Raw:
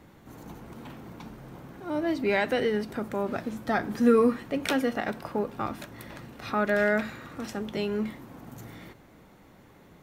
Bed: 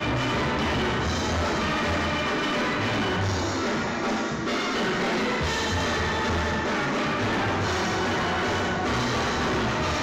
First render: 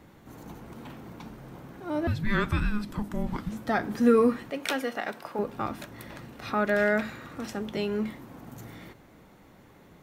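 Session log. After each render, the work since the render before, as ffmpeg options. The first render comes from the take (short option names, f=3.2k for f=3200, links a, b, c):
-filter_complex "[0:a]asettb=1/sr,asplit=3[a][b][c];[a]atrim=end=2.074[d];[b]atrim=start=2.07:end=3.52,asetpts=PTS-STARTPTS,afade=t=in:d=0.004:c=qsin,afade=t=out:st=1.446:d=0.004:c=qsin,afreqshift=-420[e];[c]atrim=start=3.516[f];[d][e]acrossfade=d=0.004:c1=hsin:c2=qsin[g];[g][f]acrossfade=d=0.004:c1=qsin:c2=hsin,asettb=1/sr,asplit=3[h][i][j];[h]atrim=end=4.504[k];[i]atrim=start=4.5:end=5.39,asetpts=PTS-STARTPTS,afade=t=in:d=0.004:c=qsin,afade=t=out:st=0.886:d=0.004:c=qsin,highpass=f=520:p=1[l];[j]atrim=start=5.386[m];[k][l]acrossfade=d=0.004:c1=hsin:c2=qsin[n];[n][m]acrossfade=d=0.004:c1=qsin:c2=hsin"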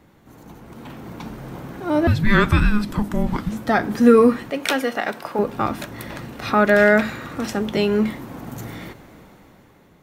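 -af "dynaudnorm=f=220:g=9:m=11dB"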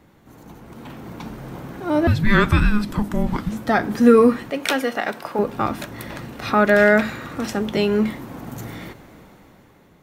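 -af anull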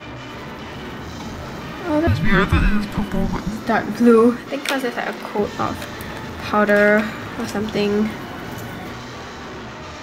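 -filter_complex "[1:a]volume=-8dB[a];[0:a][a]amix=inputs=2:normalize=0"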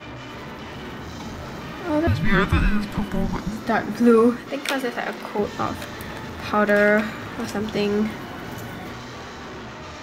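-af "volume=-3dB"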